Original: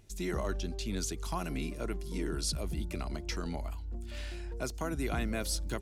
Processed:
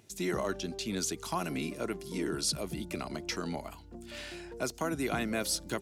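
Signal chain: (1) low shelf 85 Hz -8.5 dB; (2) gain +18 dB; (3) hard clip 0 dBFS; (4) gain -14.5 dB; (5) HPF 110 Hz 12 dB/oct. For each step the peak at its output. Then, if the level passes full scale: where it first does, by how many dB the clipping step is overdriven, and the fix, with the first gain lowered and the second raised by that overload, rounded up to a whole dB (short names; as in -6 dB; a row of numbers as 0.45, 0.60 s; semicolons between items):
-23.0, -5.0, -5.0, -19.5, -19.0 dBFS; no overload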